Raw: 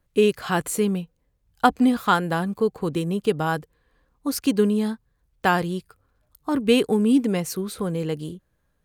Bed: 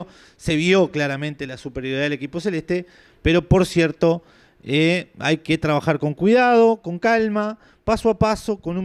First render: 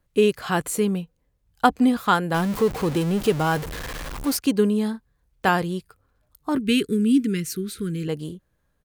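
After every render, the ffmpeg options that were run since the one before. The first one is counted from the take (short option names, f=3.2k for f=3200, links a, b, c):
-filter_complex "[0:a]asettb=1/sr,asplit=3[a][b][c];[a]atrim=end=2.344[d];[b]atrim=start=2.34:end=4.37,asetpts=PTS-STARTPTS,afade=t=in:d=0.004:c=qsin,afade=t=out:st=2.026:d=0.004:c=qsin,aeval=exprs='val(0)+0.5*0.0473*sgn(val(0))':c=same[e];[c]atrim=start=4.366[f];[d][e]acrossfade=d=0.004:c1=hsin:c2=qsin[g];[g][f]acrossfade=d=0.004:c1=qsin:c2=hsin,asplit=3[h][i][j];[h]afade=t=out:st=4.93:d=0.02[k];[i]asplit=2[l][m];[m]adelay=31,volume=-7dB[n];[l][n]amix=inputs=2:normalize=0,afade=t=in:st=4.93:d=0.02,afade=t=out:st=5.48:d=0.02[o];[j]afade=t=in:st=5.48:d=0.02[p];[k][o][p]amix=inputs=3:normalize=0,asettb=1/sr,asplit=3[q][r][s];[q]atrim=end=6.574[t];[r]atrim=start=6.57:end=8.08,asetpts=PTS-STARTPTS,afade=t=in:d=0.004:c=qsin,afade=t=out:st=1.506:d=0.004:c=qsin,asuperstop=centerf=750:order=8:qfactor=0.77[u];[s]atrim=start=8.076[v];[t][u]acrossfade=d=0.004:c1=hsin:c2=qsin[w];[w][v]acrossfade=d=0.004:c1=qsin:c2=hsin"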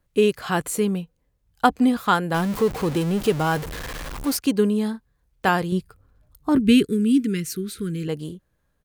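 -filter_complex "[0:a]asettb=1/sr,asplit=3[a][b][c];[a]atrim=end=5.724[d];[b]atrim=start=5.72:end=6.85,asetpts=PTS-STARTPTS,afade=t=in:d=0.004:c=qsin,afade=t=out:st=1.126:d=0.004:c=qsin,lowshelf=f=300:g=10[e];[c]atrim=start=6.846[f];[d][e]acrossfade=d=0.004:c1=hsin:c2=qsin[g];[g][f]acrossfade=d=0.004:c1=qsin:c2=hsin"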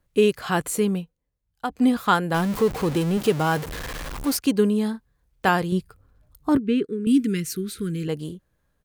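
-filter_complex "[0:a]asettb=1/sr,asplit=3[a][b][c];[a]atrim=end=3.174[d];[b]atrim=start=3.17:end=3.69,asetpts=PTS-STARTPTS,afade=t=in:d=0.004:c=qsin,afade=t=out:st=0.516:d=0.004:c=qsin,highpass=80[e];[c]atrim=start=3.686[f];[d][e]acrossfade=d=0.004:c1=hsin:c2=qsin[g];[g][f]acrossfade=d=0.004:c1=qsin:c2=hsin,asettb=1/sr,asplit=3[h][i][j];[h]atrim=end=6.574[k];[i]atrim=start=6.57:end=7.07,asetpts=PTS-STARTPTS,afade=t=in:d=0.004:c=qsin,afade=t=out:st=0.496:d=0.004:c=qsin,bandpass=f=650:t=q:w=0.9[l];[j]atrim=start=7.066[m];[k][l]acrossfade=d=0.004:c1=hsin:c2=qsin[n];[n][m]acrossfade=d=0.004:c1=qsin:c2=hsin,asplit=3[o][p][q];[o]atrim=end=1.15,asetpts=PTS-STARTPTS,afade=t=out:st=0.98:d=0.17:silence=0.281838[r];[p]atrim=start=1.15:end=1.69,asetpts=PTS-STARTPTS,volume=-11dB[s];[q]atrim=start=1.69,asetpts=PTS-STARTPTS,afade=t=in:d=0.17:silence=0.281838[t];[r][s][t]concat=n=3:v=0:a=1"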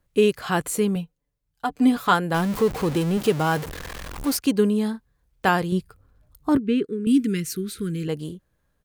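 -filter_complex "[0:a]asettb=1/sr,asplit=3[a][b][c];[a]atrim=end=0.954[d];[b]atrim=start=0.95:end=2.13,asetpts=PTS-STARTPTS,afade=t=in:d=0.004:c=qsin,afade=t=out:st=1.176:d=0.004:c=qsin,aecho=1:1:6.9:0.57,atrim=end_sample=52038[e];[c]atrim=start=2.126[f];[d][e]acrossfade=d=0.004:c1=hsin:c2=qsin[g];[g][f]acrossfade=d=0.004:c1=qsin:c2=hsin,asettb=1/sr,asplit=3[h][i][j];[h]atrim=end=3.704[k];[i]atrim=start=3.7:end=4.18,asetpts=PTS-STARTPTS,afade=t=in:d=0.004:c=qsin,afade=t=out:st=0.476:d=0.004:c=qsin,aeval=exprs='val(0)*sin(2*PI*21*n/s)':c=same[l];[j]atrim=start=4.176[m];[k][l]acrossfade=d=0.004:c1=hsin:c2=qsin[n];[n][m]acrossfade=d=0.004:c1=qsin:c2=hsin"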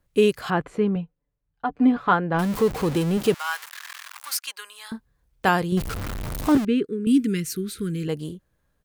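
-filter_complex "[0:a]asettb=1/sr,asplit=3[a][b][c];[a]atrim=end=0.504[d];[b]atrim=start=0.5:end=2.39,asetpts=PTS-STARTPTS,afade=t=in:d=0.004:c=qsin,afade=t=out:st=1.886:d=0.004:c=qsin,lowpass=2k[e];[c]atrim=start=2.386[f];[d][e]acrossfade=d=0.004:c1=hsin:c2=qsin[g];[g][f]acrossfade=d=0.004:c1=qsin:c2=hsin,asettb=1/sr,asplit=3[h][i][j];[h]atrim=end=3.344[k];[i]atrim=start=3.34:end=4.92,asetpts=PTS-STARTPTS,afade=t=in:d=0.004:c=qsin,afade=t=out:st=1.576:d=0.004:c=qsin,highpass=f=1.1k:w=0.5412,highpass=f=1.1k:w=1.3066[l];[j]atrim=start=4.916[m];[k][l]acrossfade=d=0.004:c1=hsin:c2=qsin[n];[n][m]acrossfade=d=0.004:c1=qsin:c2=hsin,asettb=1/sr,asplit=3[o][p][q];[o]atrim=end=5.774[r];[p]atrim=start=5.77:end=6.65,asetpts=PTS-STARTPTS,afade=t=in:d=0.004:c=qsin,afade=t=out:st=0.876:d=0.004:c=qsin,aeval=exprs='val(0)+0.5*0.0631*sgn(val(0))':c=same[s];[q]atrim=start=6.646[t];[r][s]acrossfade=d=0.004:c1=hsin:c2=qsin[u];[u][t]acrossfade=d=0.004:c1=qsin:c2=hsin"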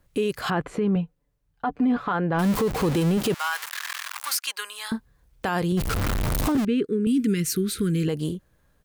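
-filter_complex "[0:a]asplit=2[a][b];[b]acompressor=threshold=-29dB:ratio=6,volume=1dB[c];[a][c]amix=inputs=2:normalize=0,alimiter=limit=-16dB:level=0:latency=1:release=21"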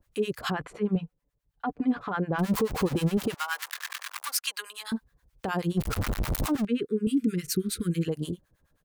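-filter_complex "[0:a]acrossover=split=810[a][b];[a]aeval=exprs='val(0)*(1-1/2+1/2*cos(2*PI*9.5*n/s))':c=same[c];[b]aeval=exprs='val(0)*(1-1/2-1/2*cos(2*PI*9.5*n/s))':c=same[d];[c][d]amix=inputs=2:normalize=0"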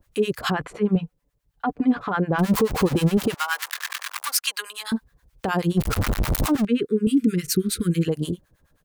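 -af "volume=6dB"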